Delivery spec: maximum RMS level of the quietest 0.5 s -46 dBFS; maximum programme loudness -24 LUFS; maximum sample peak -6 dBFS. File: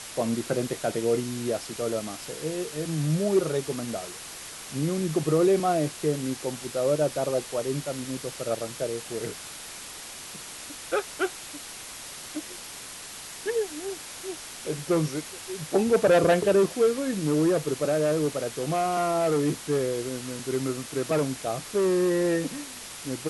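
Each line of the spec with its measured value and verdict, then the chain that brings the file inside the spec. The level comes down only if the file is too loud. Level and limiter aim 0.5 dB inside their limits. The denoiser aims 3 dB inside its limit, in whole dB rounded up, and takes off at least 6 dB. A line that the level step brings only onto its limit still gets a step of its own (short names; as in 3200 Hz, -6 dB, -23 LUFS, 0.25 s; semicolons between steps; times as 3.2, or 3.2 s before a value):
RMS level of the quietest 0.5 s -41 dBFS: fail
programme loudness -27.0 LUFS: OK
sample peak -10.5 dBFS: OK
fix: denoiser 8 dB, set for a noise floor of -41 dBFS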